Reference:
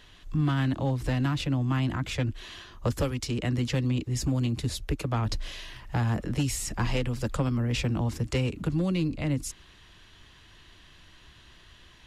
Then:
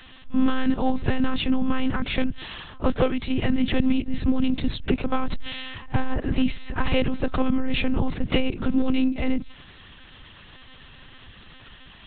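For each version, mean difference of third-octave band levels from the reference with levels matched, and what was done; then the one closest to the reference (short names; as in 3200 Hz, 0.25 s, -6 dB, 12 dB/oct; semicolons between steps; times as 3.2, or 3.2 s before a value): 7.0 dB: reverse echo 49 ms -22.5 dB; monotone LPC vocoder at 8 kHz 260 Hz; gain +7 dB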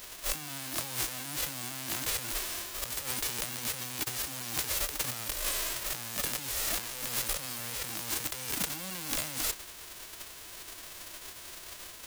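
16.5 dB: spectral whitening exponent 0.1; negative-ratio compressor -36 dBFS, ratio -1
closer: first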